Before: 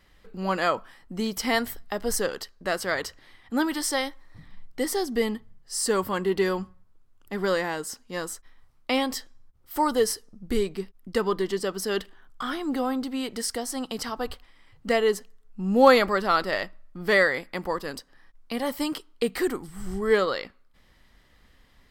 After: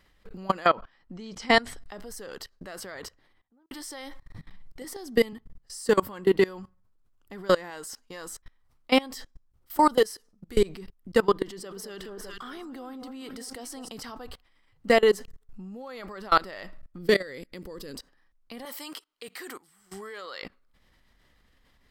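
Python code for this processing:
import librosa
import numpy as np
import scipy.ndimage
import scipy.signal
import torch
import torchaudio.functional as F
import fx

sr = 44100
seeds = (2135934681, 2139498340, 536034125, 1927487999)

y = fx.lowpass(x, sr, hz=fx.line((0.65, 4400.0), (1.97, 11000.0)), slope=24, at=(0.65, 1.97), fade=0.02)
y = fx.studio_fade_out(y, sr, start_s=2.73, length_s=0.98)
y = fx.band_squash(y, sr, depth_pct=40, at=(4.84, 5.33))
y = fx.peak_eq(y, sr, hz=180.0, db=-7.5, octaves=2.2, at=(7.7, 8.27))
y = fx.low_shelf(y, sr, hz=400.0, db=-8.0, at=(9.98, 10.57))
y = fx.echo_alternate(y, sr, ms=201, hz=1200.0, feedback_pct=58, wet_db=-11.0, at=(11.62, 13.88), fade=0.02)
y = fx.over_compress(y, sr, threshold_db=-25.0, ratio=-1.0, at=(15.11, 16.31), fade=0.02)
y = fx.curve_eq(y, sr, hz=(490.0, 750.0, 4300.0), db=(0, -15, -1), at=(16.98, 17.95))
y = fx.highpass(y, sr, hz=1200.0, slope=6, at=(18.65, 20.43))
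y = fx.level_steps(y, sr, step_db=23)
y = y * 10.0 ** (6.0 / 20.0)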